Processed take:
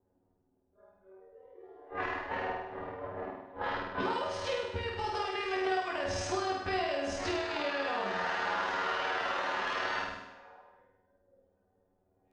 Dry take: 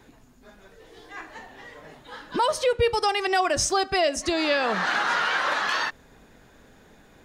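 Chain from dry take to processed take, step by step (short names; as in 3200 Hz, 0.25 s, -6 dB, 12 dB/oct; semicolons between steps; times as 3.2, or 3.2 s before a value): per-bin compression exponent 0.6; LPF 3800 Hz 12 dB/oct; gate -30 dBFS, range -13 dB; low-pass opened by the level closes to 450 Hz, open at -21.5 dBFS; spectral noise reduction 20 dB; compressor 12:1, threshold -30 dBFS, peak gain reduction 15 dB; notch comb 160 Hz; granular stretch 1.7×, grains 52 ms; on a send: flutter echo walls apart 8.6 m, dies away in 0.86 s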